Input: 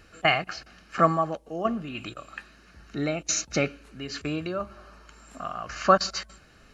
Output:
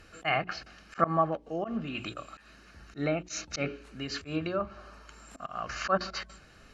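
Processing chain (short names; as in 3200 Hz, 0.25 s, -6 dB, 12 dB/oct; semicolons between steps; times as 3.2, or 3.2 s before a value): notches 60/120/180/240/300/360/420 Hz; auto swell 0.122 s; treble ducked by the level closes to 2500 Hz, closed at -25.5 dBFS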